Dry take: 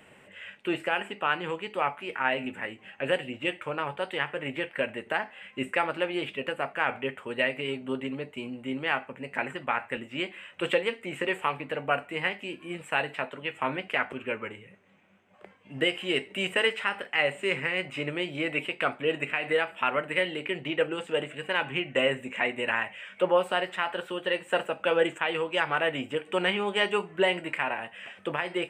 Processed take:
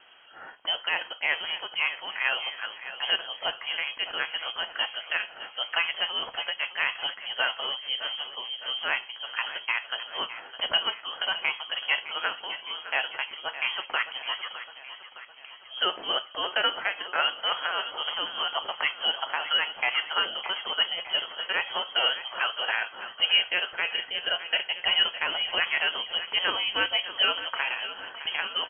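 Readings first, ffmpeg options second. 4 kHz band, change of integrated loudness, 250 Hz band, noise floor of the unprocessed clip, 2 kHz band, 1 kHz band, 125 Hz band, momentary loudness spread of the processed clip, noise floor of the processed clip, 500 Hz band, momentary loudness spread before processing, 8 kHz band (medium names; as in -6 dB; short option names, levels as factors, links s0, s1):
+10.5 dB, +2.0 dB, -17.0 dB, -55 dBFS, +1.0 dB, -1.0 dB, under -15 dB, 9 LU, -48 dBFS, -10.5 dB, 9 LU, under -30 dB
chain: -af "lowpass=f=2900:t=q:w=0.5098,lowpass=f=2900:t=q:w=0.6013,lowpass=f=2900:t=q:w=0.9,lowpass=f=2900:t=q:w=2.563,afreqshift=-3400,aecho=1:1:611|1222|1833|2444|3055|3666:0.224|0.128|0.0727|0.0415|0.0236|0.0135"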